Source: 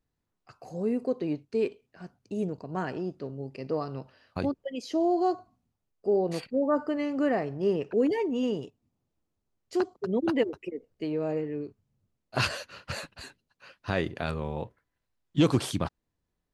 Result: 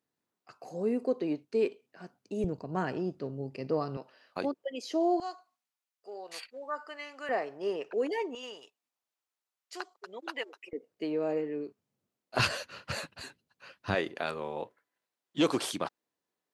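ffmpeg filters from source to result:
-af "asetnsamples=n=441:p=0,asendcmd='2.44 highpass f 86;3.97 highpass f 340;5.2 highpass f 1300;7.29 highpass f 530;8.35 highpass f 1100;10.73 highpass f 270;12.39 highpass f 93;13.95 highpass f 350',highpass=230"

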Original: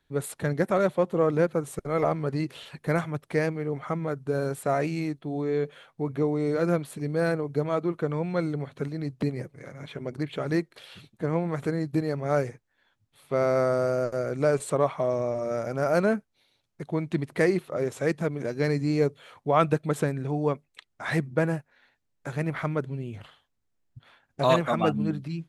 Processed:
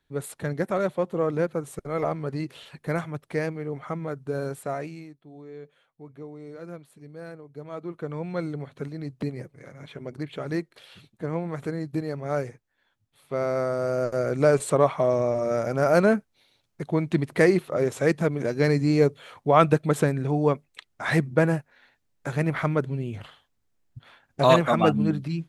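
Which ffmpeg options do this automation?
-af "volume=17dB,afade=t=out:st=4.48:d=0.61:silence=0.223872,afade=t=in:st=7.54:d=0.78:silence=0.237137,afade=t=in:st=13.77:d=0.52:silence=0.473151"

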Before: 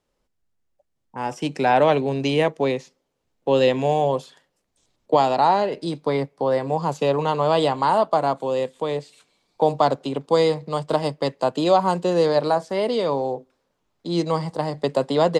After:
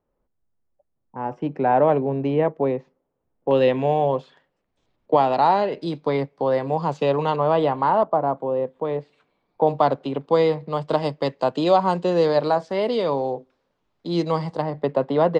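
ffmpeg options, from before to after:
-af "asetnsamples=n=441:p=0,asendcmd='3.51 lowpass f 2600;5.33 lowpass f 4100;7.36 lowpass f 2000;8.03 lowpass f 1100;8.85 lowpass f 1700;9.67 lowpass f 3000;10.81 lowpass f 4600;14.62 lowpass f 2100',lowpass=1.2k"

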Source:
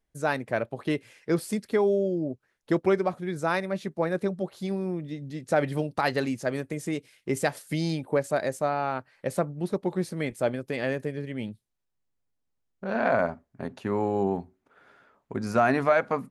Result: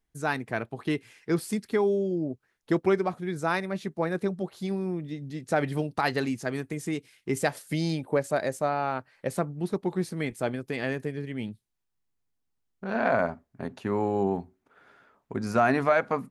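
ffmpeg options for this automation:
-af "asetnsamples=n=441:p=0,asendcmd='2.11 equalizer g -6;6.29 equalizer g -12.5;7.41 equalizer g -1;9.29 equalizer g -8.5;12.93 equalizer g -2.5',equalizer=f=560:t=o:w=0.25:g=-13.5"

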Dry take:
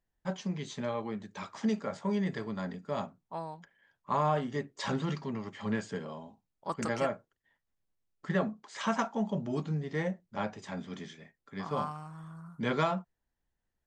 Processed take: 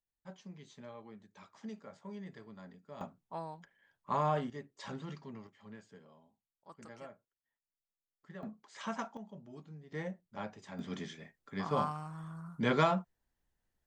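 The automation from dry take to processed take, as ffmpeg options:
-af "asetnsamples=n=441:p=0,asendcmd='3.01 volume volume -3dB;4.5 volume volume -11dB;5.47 volume volume -19dB;8.43 volume volume -8.5dB;9.17 volume volume -17.5dB;9.92 volume volume -7.5dB;10.79 volume volume 1dB',volume=-15dB"

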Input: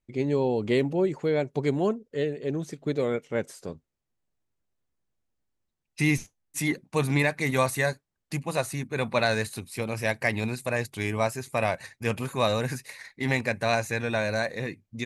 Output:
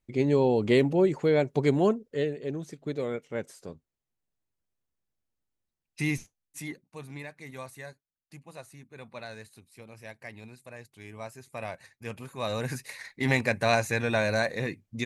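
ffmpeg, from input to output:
-af "volume=20.5dB,afade=t=out:st=1.88:d=0.71:silence=0.446684,afade=t=out:st=6.06:d=0.91:silence=0.237137,afade=t=in:st=10.99:d=0.73:silence=0.446684,afade=t=in:st=12.37:d=0.57:silence=0.266073"

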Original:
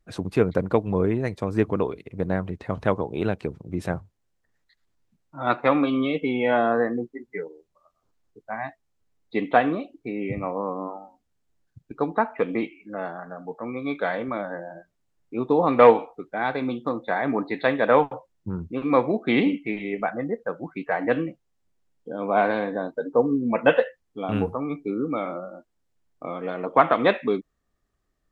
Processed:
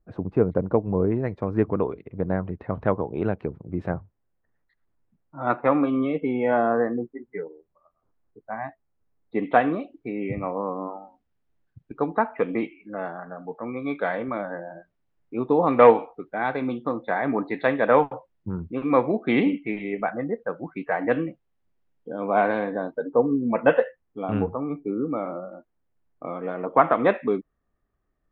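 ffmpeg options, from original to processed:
-af "asetnsamples=n=441:p=0,asendcmd='1.12 lowpass f 1600;9.43 lowpass f 2800;23.02 lowpass f 1900;24.53 lowpass f 1300;25.53 lowpass f 1900',lowpass=1k"

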